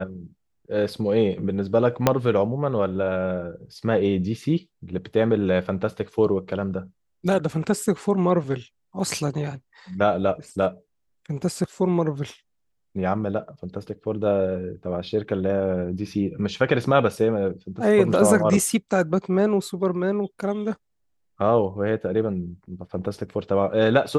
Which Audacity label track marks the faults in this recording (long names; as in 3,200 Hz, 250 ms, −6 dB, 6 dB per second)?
2.070000	2.070000	click −2 dBFS